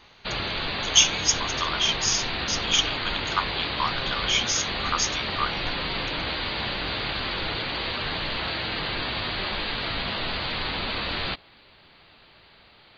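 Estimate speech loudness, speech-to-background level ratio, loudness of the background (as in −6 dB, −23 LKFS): −25.0 LKFS, 3.0 dB, −28.0 LKFS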